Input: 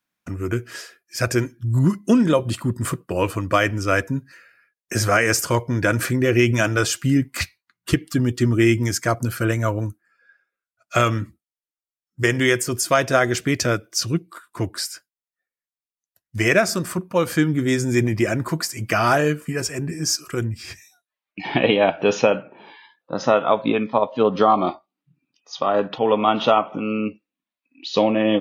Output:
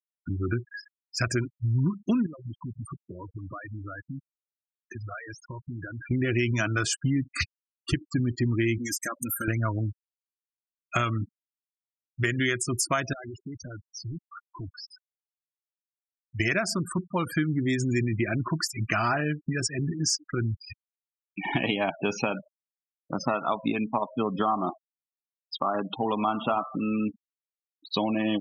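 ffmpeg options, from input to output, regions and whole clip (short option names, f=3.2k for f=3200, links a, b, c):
-filter_complex "[0:a]asettb=1/sr,asplit=3[a][b][c];[a]atrim=end=2.264[d];[b]atrim=start=2.26:end=6.11,asetpts=PTS-STARTPTS,afade=t=in:d=0.004:c=qsin,afade=t=out:st=3.846:d=0.004:c=qsin,acrusher=bits=8:dc=4:mix=0:aa=0.000001,acompressor=threshold=-34dB:ratio=4:attack=3.2:release=140:knee=1:detection=peak[e];[c]atrim=start=6.106[f];[d][e]acrossfade=d=0.004:c1=hsin:c2=qsin[g];[g][f]acrossfade=d=0.004:c1=qsin:c2=hsin,asettb=1/sr,asplit=3[h][i][j];[h]atrim=end=8.784[k];[i]atrim=start=8.78:end=9.48,asetpts=PTS-STARTPTS,afade=t=in:d=0.004:c=qsin,afade=t=out:st=0.696:d=0.004:c=qsin,aemphasis=mode=production:type=bsi,aecho=1:1:3.7:0.63,atrim=end_sample=30870,acompressor=threshold=-23dB:ratio=20:attack=3.2:release=140:knee=1:detection=peak[l];[j]atrim=start=9.476[m];[k][l]acrossfade=d=0.004:c1=hsin:c2=qsin[n];[n][m]acrossfade=d=0.004:c1=qsin:c2=hsin,asettb=1/sr,asplit=3[o][p][q];[o]atrim=end=13.134[r];[p]atrim=start=13.13:end=16.4,asetpts=PTS-STARTPTS,afade=t=in:d=0.004:c=qsin,afade=t=out:st=3.266:d=0.004:c=qsin,highpass=f=51:w=0.5412,highpass=f=51:w=1.3066,acompressor=threshold=-28dB:ratio=6:attack=3.2:release=140:knee=1:detection=peak,volume=31.5dB,asoftclip=hard,volume=-31.5dB[s];[q]atrim=start=16.396[t];[r][s]acrossfade=d=0.004:c1=hsin:c2=qsin[u];[u][t]acrossfade=d=0.004:c1=qsin:c2=hsin,asettb=1/sr,asplit=3[v][w][x];[v]atrim=end=26.244[y];[w]atrim=start=26.24:end=27.92,asetpts=PTS-STARTPTS,afade=t=in:d=0.004:c=qsin,afade=t=out:st=1.676:d=0.004:c=qsin,acrossover=split=2700[z][aa];[aa]acompressor=threshold=-44dB:ratio=4:attack=1:release=60[ab];[z][ab]amix=inputs=2:normalize=0,bandreject=f=118.3:t=h:w=4,bandreject=f=236.6:t=h:w=4,bandreject=f=354.9:t=h:w=4,bandreject=f=473.2:t=h:w=4,bandreject=f=591.5:t=h:w=4,bandreject=f=709.8:t=h:w=4,bandreject=f=828.1:t=h:w=4,bandreject=f=946.4:t=h:w=4,bandreject=f=1.0647k:t=h:w=4,bandreject=f=1.183k:t=h:w=4,bandreject=f=1.3013k:t=h:w=4,bandreject=f=1.4196k:t=h:w=4,bandreject=f=1.5379k:t=h:w=4,bandreject=f=1.6562k:t=h:w=4,bandreject=f=1.7745k:t=h:w=4,bandreject=f=1.8928k:t=h:w=4,bandreject=f=2.0111k:t=h:w=4,bandreject=f=2.1294k:t=h:w=4,bandreject=f=2.2477k:t=h:w=4,bandreject=f=2.366k:t=h:w=4,bandreject=f=2.4843k:t=h:w=4,bandreject=f=2.6026k:t=h:w=4,bandreject=f=2.7209k:t=h:w=4,bandreject=f=2.8392k:t=h:w=4,bandreject=f=2.9575k:t=h:w=4,bandreject=f=3.0758k:t=h:w=4,bandreject=f=3.1941k:t=h:w=4,bandreject=f=3.3124k:t=h:w=4,bandreject=f=3.4307k:t=h:w=4,bandreject=f=3.549k:t=h:w=4,bandreject=f=3.6673k:t=h:w=4,bandreject=f=3.7856k:t=h:w=4[ac];[x]atrim=start=27.916[ad];[y][ac]acrossfade=d=0.004:c1=hsin:c2=qsin[ae];[ae][ad]acrossfade=d=0.004:c1=qsin:c2=hsin,afftfilt=real='re*gte(hypot(re,im),0.0562)':imag='im*gte(hypot(re,im),0.0562)':win_size=1024:overlap=0.75,equalizer=f=500:w=2.8:g=-12.5,acompressor=threshold=-24dB:ratio=3"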